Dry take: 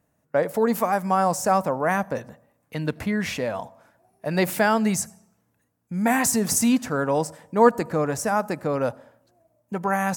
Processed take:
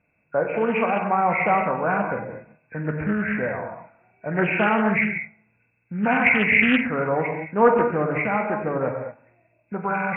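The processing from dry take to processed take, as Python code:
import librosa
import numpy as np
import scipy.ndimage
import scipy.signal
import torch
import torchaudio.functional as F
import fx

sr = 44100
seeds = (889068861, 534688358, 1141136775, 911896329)

y = fx.freq_compress(x, sr, knee_hz=1400.0, ratio=4.0)
y = fx.rev_gated(y, sr, seeds[0], gate_ms=250, shape='flat', drr_db=2.0)
y = fx.doppler_dist(y, sr, depth_ms=0.21)
y = y * librosa.db_to_amplitude(-1.5)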